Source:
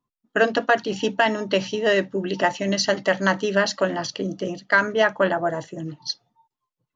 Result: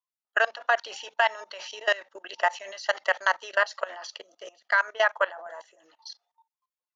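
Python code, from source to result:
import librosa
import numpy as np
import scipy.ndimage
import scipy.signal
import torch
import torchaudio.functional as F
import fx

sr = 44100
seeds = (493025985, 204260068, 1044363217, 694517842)

y = scipy.signal.sosfilt(scipy.signal.butter(4, 660.0, 'highpass', fs=sr, output='sos'), x)
y = fx.dynamic_eq(y, sr, hz=1100.0, q=0.7, threshold_db=-34.0, ratio=4.0, max_db=3)
y = fx.level_steps(y, sr, step_db=20)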